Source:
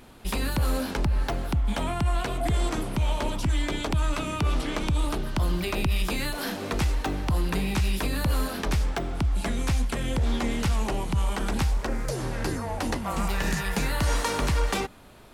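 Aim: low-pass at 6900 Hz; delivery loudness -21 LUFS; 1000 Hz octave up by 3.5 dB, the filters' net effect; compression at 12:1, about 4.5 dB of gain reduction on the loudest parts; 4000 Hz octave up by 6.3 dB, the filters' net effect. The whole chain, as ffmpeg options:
-af "lowpass=6.9k,equalizer=f=1k:t=o:g=4,equalizer=f=4k:t=o:g=8,acompressor=threshold=-24dB:ratio=12,volume=8.5dB"

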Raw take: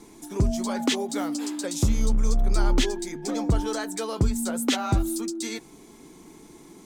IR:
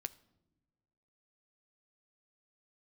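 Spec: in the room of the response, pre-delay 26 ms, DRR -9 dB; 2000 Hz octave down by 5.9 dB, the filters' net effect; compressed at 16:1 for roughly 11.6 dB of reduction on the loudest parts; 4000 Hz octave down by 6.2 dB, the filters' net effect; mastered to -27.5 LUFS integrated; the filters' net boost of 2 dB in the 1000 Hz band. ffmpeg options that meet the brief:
-filter_complex "[0:a]equalizer=f=1k:t=o:g=5,equalizer=f=2k:t=o:g=-8.5,equalizer=f=4k:t=o:g=-5.5,acompressor=threshold=-28dB:ratio=16,asplit=2[a][b];[1:a]atrim=start_sample=2205,adelay=26[c];[b][c]afir=irnorm=-1:irlink=0,volume=11.5dB[d];[a][d]amix=inputs=2:normalize=0,volume=-3dB"

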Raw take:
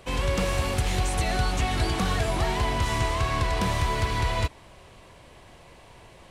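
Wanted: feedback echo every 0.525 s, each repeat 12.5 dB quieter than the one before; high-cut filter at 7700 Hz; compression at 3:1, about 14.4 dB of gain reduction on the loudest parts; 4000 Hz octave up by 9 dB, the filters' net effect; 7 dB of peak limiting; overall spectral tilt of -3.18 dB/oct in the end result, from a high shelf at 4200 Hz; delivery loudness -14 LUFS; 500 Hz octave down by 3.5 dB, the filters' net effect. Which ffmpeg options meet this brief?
-af "lowpass=7.7k,equalizer=f=500:t=o:g=-5,equalizer=f=4k:t=o:g=8.5,highshelf=f=4.2k:g=5.5,acompressor=threshold=-40dB:ratio=3,alimiter=level_in=6.5dB:limit=-24dB:level=0:latency=1,volume=-6.5dB,aecho=1:1:525|1050|1575:0.237|0.0569|0.0137,volume=26.5dB"

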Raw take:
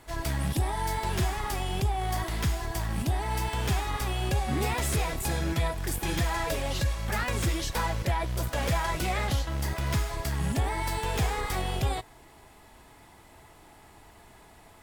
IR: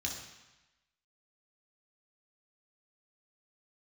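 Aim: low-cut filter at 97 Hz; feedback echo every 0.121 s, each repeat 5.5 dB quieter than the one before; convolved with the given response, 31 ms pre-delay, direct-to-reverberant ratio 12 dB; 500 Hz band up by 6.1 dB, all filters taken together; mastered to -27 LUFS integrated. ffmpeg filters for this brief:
-filter_complex "[0:a]highpass=97,equalizer=f=500:t=o:g=8,aecho=1:1:121|242|363|484|605|726|847:0.531|0.281|0.149|0.079|0.0419|0.0222|0.0118,asplit=2[a][b];[1:a]atrim=start_sample=2205,adelay=31[c];[b][c]afir=irnorm=-1:irlink=0,volume=-13.5dB[d];[a][d]amix=inputs=2:normalize=0,volume=0.5dB"

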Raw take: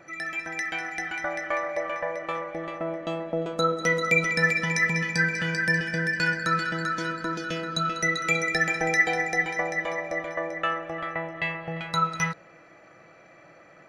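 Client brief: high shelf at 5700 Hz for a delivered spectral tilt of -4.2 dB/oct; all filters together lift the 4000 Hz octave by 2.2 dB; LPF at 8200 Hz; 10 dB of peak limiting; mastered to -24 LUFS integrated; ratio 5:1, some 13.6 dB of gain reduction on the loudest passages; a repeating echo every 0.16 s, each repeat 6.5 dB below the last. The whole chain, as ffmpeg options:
-af "lowpass=8.2k,equalizer=f=4k:t=o:g=5,highshelf=f=5.7k:g=-6,acompressor=threshold=-32dB:ratio=5,alimiter=level_in=3.5dB:limit=-24dB:level=0:latency=1,volume=-3.5dB,aecho=1:1:160|320|480|640|800|960:0.473|0.222|0.105|0.0491|0.0231|0.0109,volume=10.5dB"

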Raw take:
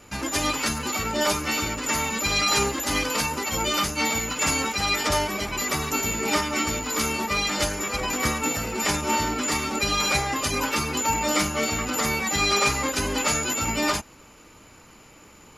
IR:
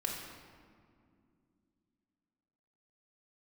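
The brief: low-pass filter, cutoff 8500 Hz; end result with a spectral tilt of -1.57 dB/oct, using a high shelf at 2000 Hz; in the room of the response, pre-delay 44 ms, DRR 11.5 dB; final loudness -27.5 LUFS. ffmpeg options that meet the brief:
-filter_complex "[0:a]lowpass=8.5k,highshelf=f=2k:g=5,asplit=2[a][b];[1:a]atrim=start_sample=2205,adelay=44[c];[b][c]afir=irnorm=-1:irlink=0,volume=-14.5dB[d];[a][d]amix=inputs=2:normalize=0,volume=-6.5dB"

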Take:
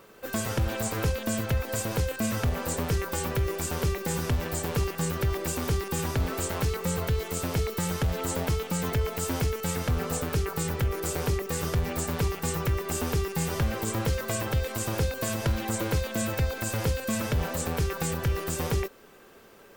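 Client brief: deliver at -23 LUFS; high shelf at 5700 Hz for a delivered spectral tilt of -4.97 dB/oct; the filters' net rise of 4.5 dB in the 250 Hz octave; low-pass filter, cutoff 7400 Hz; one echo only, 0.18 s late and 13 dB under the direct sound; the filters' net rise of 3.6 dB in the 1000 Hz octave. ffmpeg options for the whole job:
-af "lowpass=7.4k,equalizer=f=250:t=o:g=6,equalizer=f=1k:t=o:g=4,highshelf=f=5.7k:g=7.5,aecho=1:1:180:0.224,volume=4dB"

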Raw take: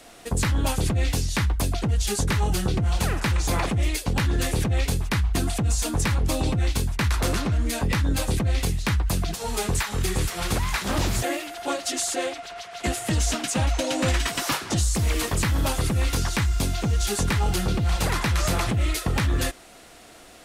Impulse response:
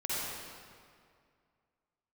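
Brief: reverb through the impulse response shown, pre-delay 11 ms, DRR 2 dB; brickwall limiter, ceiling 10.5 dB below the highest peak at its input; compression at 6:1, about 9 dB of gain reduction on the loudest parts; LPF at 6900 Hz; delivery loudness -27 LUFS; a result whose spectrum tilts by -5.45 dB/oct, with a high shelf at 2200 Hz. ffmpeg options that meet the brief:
-filter_complex "[0:a]lowpass=6.9k,highshelf=f=2.2k:g=-6.5,acompressor=threshold=-29dB:ratio=6,alimiter=level_in=5.5dB:limit=-24dB:level=0:latency=1,volume=-5.5dB,asplit=2[a][b];[1:a]atrim=start_sample=2205,adelay=11[c];[b][c]afir=irnorm=-1:irlink=0,volume=-8.5dB[d];[a][d]amix=inputs=2:normalize=0,volume=9dB"

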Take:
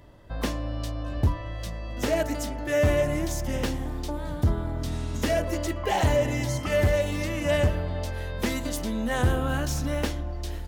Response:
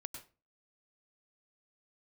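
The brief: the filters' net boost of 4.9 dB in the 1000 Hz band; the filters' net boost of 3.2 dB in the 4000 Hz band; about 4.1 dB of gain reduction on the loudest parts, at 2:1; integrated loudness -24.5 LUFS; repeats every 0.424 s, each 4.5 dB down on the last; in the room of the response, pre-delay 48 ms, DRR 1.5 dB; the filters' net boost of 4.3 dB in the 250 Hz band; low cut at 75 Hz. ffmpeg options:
-filter_complex "[0:a]highpass=75,equalizer=f=250:t=o:g=5,equalizer=f=1k:t=o:g=6,equalizer=f=4k:t=o:g=4,acompressor=threshold=-24dB:ratio=2,aecho=1:1:424|848|1272|1696|2120|2544|2968|3392|3816:0.596|0.357|0.214|0.129|0.0772|0.0463|0.0278|0.0167|0.01,asplit=2[a][b];[1:a]atrim=start_sample=2205,adelay=48[c];[b][c]afir=irnorm=-1:irlink=0,volume=2dB[d];[a][d]amix=inputs=2:normalize=0,volume=-0.5dB"

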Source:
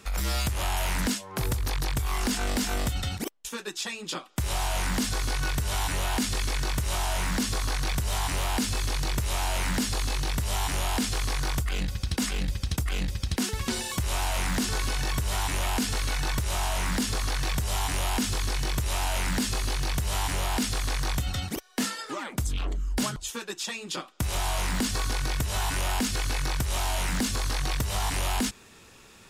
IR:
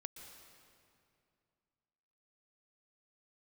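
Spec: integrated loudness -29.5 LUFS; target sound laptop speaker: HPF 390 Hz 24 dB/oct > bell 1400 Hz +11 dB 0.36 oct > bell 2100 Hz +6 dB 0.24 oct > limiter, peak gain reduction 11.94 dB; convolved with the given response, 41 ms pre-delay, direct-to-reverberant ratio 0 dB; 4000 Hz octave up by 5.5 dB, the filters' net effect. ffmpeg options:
-filter_complex "[0:a]equalizer=f=4k:t=o:g=6.5,asplit=2[a][b];[1:a]atrim=start_sample=2205,adelay=41[c];[b][c]afir=irnorm=-1:irlink=0,volume=4dB[d];[a][d]amix=inputs=2:normalize=0,highpass=f=390:w=0.5412,highpass=f=390:w=1.3066,equalizer=f=1.4k:t=o:w=0.36:g=11,equalizer=f=2.1k:t=o:w=0.24:g=6,volume=1.5dB,alimiter=limit=-21.5dB:level=0:latency=1"

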